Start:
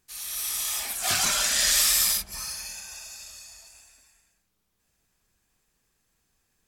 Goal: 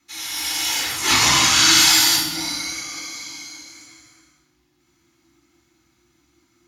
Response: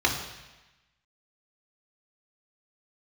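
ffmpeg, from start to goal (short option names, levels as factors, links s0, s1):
-filter_complex "[0:a]equalizer=f=740:t=o:w=0.49:g=-10.5,afreqshift=-360[s0];[1:a]atrim=start_sample=2205[s1];[s0][s1]afir=irnorm=-1:irlink=0,volume=0.75"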